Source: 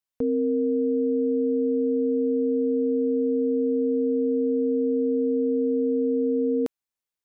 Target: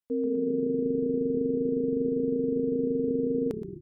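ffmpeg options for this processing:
-filter_complex "[0:a]asplit=9[a][b][c][d][e][f][g][h][i];[b]adelay=234,afreqshift=-36,volume=-9dB[j];[c]adelay=468,afreqshift=-72,volume=-12.9dB[k];[d]adelay=702,afreqshift=-108,volume=-16.8dB[l];[e]adelay=936,afreqshift=-144,volume=-20.6dB[m];[f]adelay=1170,afreqshift=-180,volume=-24.5dB[n];[g]adelay=1404,afreqshift=-216,volume=-28.4dB[o];[h]adelay=1638,afreqshift=-252,volume=-32.3dB[p];[i]adelay=1872,afreqshift=-288,volume=-36.1dB[q];[a][j][k][l][m][n][o][p][q]amix=inputs=9:normalize=0,atempo=1.9,volume=-4.5dB"

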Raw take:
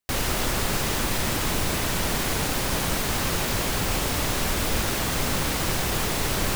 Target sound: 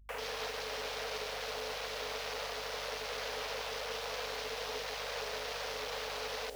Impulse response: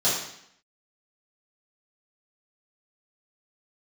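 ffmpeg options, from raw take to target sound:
-filter_complex "[0:a]afreqshift=420,lowshelf=f=430:g=-7,acrossover=split=150|2400[a][b][c];[b]alimiter=limit=-23.5dB:level=0:latency=1:release=336[d];[a][d][c]amix=inputs=3:normalize=0,aeval=exprs='val(0)+0.00501*(sin(2*PI*50*n/s)+sin(2*PI*2*50*n/s)/2+sin(2*PI*3*50*n/s)/3+sin(2*PI*4*50*n/s)/4+sin(2*PI*5*50*n/s)/5)':c=same,afwtdn=0.0224,volume=-8.5dB"

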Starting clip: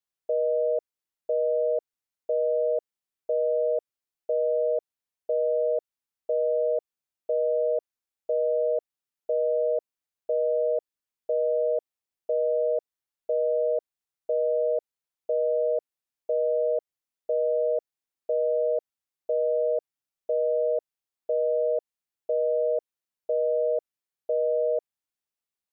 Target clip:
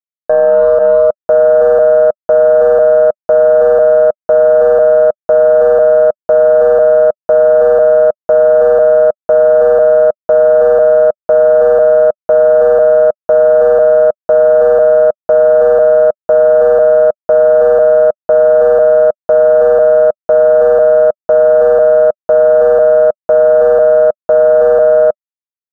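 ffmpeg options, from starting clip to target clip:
-filter_complex "[0:a]dynaudnorm=f=430:g=3:m=10dB,aeval=exprs='val(0)*gte(abs(val(0)),0.0422)':c=same,adynamicequalizer=threshold=0.0447:dfrequency=290:dqfactor=1:tfrequency=290:tqfactor=1:attack=5:release=100:ratio=0.375:range=1.5:mode=boostabove:tftype=bell,aeval=exprs='0.282*(cos(1*acos(clip(val(0)/0.282,-1,1)))-cos(1*PI/2))+0.0251*(cos(7*acos(clip(val(0)/0.282,-1,1)))-cos(7*PI/2))+0.00398*(cos(8*acos(clip(val(0)/0.282,-1,1)))-cos(8*PI/2))':c=same,firequalizer=gain_entry='entry(210,0);entry(320,-9);entry(600,8);entry(950,4);entry(1300,12);entry(2100,-26)':delay=0.05:min_phase=1,asplit=2[a][b];[b]aecho=0:1:317:0.501[c];[a][c]amix=inputs=2:normalize=0,alimiter=level_in=15dB:limit=-1dB:release=50:level=0:latency=1,volume=-1dB"

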